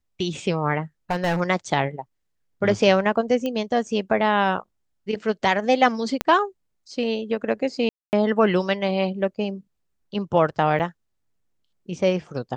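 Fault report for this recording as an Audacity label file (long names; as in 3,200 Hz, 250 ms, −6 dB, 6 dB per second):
1.100000	1.410000	clipping −17 dBFS
3.460000	3.460000	click −15 dBFS
6.210000	6.210000	click −7 dBFS
7.890000	8.130000	drop-out 239 ms
10.790000	10.800000	drop-out 8.4 ms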